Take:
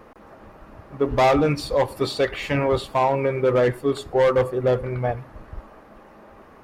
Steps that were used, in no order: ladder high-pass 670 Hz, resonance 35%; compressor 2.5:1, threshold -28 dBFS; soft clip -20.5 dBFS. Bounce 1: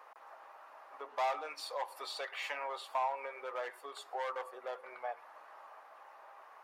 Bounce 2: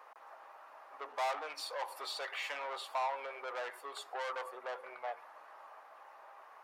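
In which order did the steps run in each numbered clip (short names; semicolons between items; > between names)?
compressor > ladder high-pass > soft clip; soft clip > compressor > ladder high-pass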